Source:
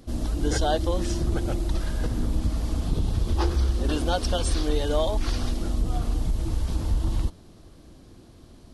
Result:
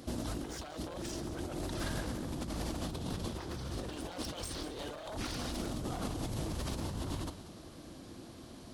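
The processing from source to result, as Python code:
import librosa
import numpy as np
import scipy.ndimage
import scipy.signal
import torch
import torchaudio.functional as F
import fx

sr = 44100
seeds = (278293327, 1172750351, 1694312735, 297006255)

y = np.minimum(x, 2.0 * 10.0 ** (-25.5 / 20.0) - x)
y = fx.highpass(y, sr, hz=190.0, slope=6)
y = fx.peak_eq(y, sr, hz=420.0, db=-4.0, octaves=0.21)
y = fx.over_compress(y, sr, threshold_db=-38.0, ratio=-1.0)
y = y + 10.0 ** (-14.5 / 20.0) * np.pad(y, (int(187 * sr / 1000.0), 0))[:len(y)]
y = F.gain(torch.from_numpy(y), -1.5).numpy()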